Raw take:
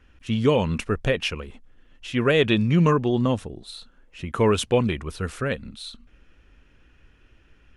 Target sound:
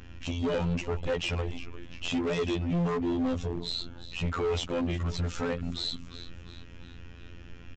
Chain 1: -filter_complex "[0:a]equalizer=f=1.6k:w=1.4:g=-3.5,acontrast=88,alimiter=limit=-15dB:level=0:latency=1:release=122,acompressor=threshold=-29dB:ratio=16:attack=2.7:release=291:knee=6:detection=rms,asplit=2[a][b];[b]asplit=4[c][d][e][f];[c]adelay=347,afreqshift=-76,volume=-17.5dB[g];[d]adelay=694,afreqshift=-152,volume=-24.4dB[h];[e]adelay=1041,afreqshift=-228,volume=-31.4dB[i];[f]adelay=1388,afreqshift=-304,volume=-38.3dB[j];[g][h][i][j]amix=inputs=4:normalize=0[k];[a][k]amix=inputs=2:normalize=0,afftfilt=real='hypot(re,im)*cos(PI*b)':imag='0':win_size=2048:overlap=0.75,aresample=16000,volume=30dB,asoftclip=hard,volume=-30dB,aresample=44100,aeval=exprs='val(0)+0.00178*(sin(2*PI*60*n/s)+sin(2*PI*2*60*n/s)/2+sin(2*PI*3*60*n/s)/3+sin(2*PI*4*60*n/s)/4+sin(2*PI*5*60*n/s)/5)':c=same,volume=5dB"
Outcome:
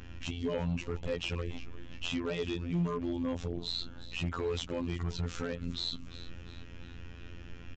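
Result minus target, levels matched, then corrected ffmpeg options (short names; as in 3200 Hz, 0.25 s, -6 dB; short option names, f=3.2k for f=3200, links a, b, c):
compressor: peak gain reduction +8 dB
-filter_complex "[0:a]equalizer=f=1.6k:w=1.4:g=-3.5,acontrast=88,alimiter=limit=-15dB:level=0:latency=1:release=122,acompressor=threshold=-20dB:ratio=16:attack=2.7:release=291:knee=6:detection=rms,asplit=2[a][b];[b]asplit=4[c][d][e][f];[c]adelay=347,afreqshift=-76,volume=-17.5dB[g];[d]adelay=694,afreqshift=-152,volume=-24.4dB[h];[e]adelay=1041,afreqshift=-228,volume=-31.4dB[i];[f]adelay=1388,afreqshift=-304,volume=-38.3dB[j];[g][h][i][j]amix=inputs=4:normalize=0[k];[a][k]amix=inputs=2:normalize=0,afftfilt=real='hypot(re,im)*cos(PI*b)':imag='0':win_size=2048:overlap=0.75,aresample=16000,volume=30dB,asoftclip=hard,volume=-30dB,aresample=44100,aeval=exprs='val(0)+0.00178*(sin(2*PI*60*n/s)+sin(2*PI*2*60*n/s)/2+sin(2*PI*3*60*n/s)/3+sin(2*PI*4*60*n/s)/4+sin(2*PI*5*60*n/s)/5)':c=same,volume=5dB"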